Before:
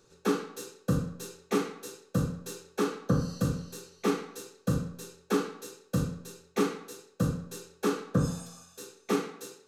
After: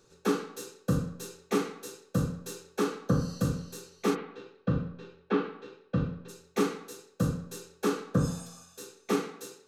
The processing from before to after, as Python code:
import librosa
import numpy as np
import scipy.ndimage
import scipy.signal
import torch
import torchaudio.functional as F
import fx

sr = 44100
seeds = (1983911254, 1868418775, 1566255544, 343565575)

y = fx.lowpass(x, sr, hz=3300.0, slope=24, at=(4.14, 6.28), fade=0.02)